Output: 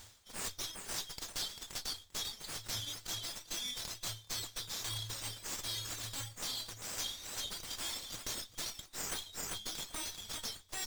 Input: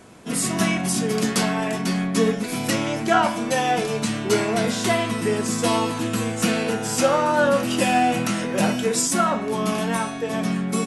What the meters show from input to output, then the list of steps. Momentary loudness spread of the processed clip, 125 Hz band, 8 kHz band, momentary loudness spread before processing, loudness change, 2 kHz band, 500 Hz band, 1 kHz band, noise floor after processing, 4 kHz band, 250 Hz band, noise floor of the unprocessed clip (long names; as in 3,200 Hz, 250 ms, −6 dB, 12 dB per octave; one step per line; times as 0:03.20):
3 LU, −22.5 dB, −12.0 dB, 5 LU, −17.5 dB, −21.5 dB, −32.0 dB, −28.0 dB, −60 dBFS, −8.5 dB, −34.0 dB, −29 dBFS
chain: high-shelf EQ 3,200 Hz +10 dB
brick-wall band-stop 110–3,100 Hz
on a send: feedback echo with a high-pass in the loop 395 ms, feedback 25%, level −9 dB
on the sum: reverb reduction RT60 1.5 s
reversed playback
downward compressor 16 to 1, threshold −34 dBFS, peak gain reduction 23.5 dB
reversed playback
windowed peak hold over 3 samples
level −1.5 dB